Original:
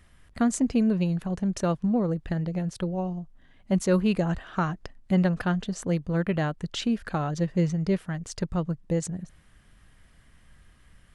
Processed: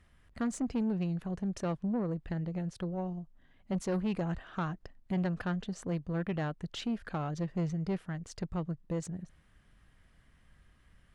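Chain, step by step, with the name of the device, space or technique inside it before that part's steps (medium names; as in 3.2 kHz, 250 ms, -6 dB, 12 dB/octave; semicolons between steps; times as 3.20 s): tube preamp driven hard (valve stage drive 21 dB, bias 0.2; treble shelf 5.5 kHz -7 dB); trim -5.5 dB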